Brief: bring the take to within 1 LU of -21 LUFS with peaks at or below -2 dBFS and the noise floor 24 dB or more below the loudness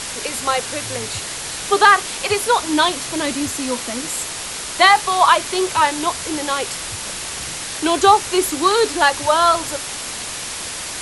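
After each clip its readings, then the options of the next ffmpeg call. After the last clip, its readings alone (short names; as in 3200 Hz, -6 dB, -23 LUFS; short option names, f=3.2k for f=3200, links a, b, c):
noise floor -29 dBFS; noise floor target -42 dBFS; loudness -18.0 LUFS; peak -1.0 dBFS; loudness target -21.0 LUFS
-> -af "afftdn=nr=13:nf=-29"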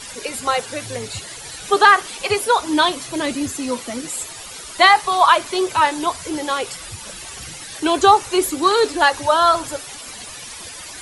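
noise floor -35 dBFS; noise floor target -42 dBFS
-> -af "afftdn=nr=7:nf=-35"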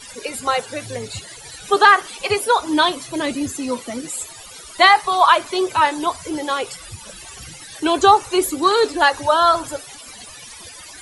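noise floor -39 dBFS; noise floor target -42 dBFS
-> -af "afftdn=nr=6:nf=-39"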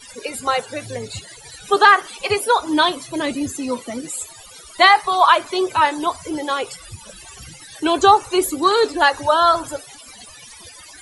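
noise floor -42 dBFS; loudness -17.5 LUFS; peak -1.5 dBFS; loudness target -21.0 LUFS
-> -af "volume=-3.5dB"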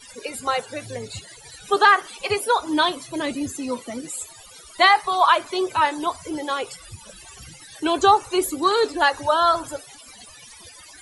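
loudness -21.0 LUFS; peak -5.0 dBFS; noise floor -45 dBFS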